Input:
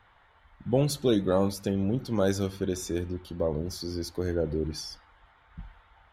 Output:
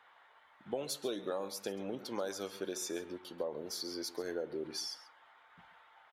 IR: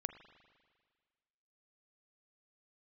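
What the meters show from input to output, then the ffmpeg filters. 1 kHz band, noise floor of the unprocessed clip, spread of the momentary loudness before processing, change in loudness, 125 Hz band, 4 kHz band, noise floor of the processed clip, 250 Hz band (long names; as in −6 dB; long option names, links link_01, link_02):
−8.0 dB, −61 dBFS, 13 LU, −11.0 dB, −25.0 dB, −3.5 dB, −64 dBFS, −14.5 dB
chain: -filter_complex "[0:a]highpass=460,acompressor=threshold=-33dB:ratio=6,asplit=2[link_01][link_02];[link_02]aecho=0:1:135:0.15[link_03];[link_01][link_03]amix=inputs=2:normalize=0,volume=-1dB"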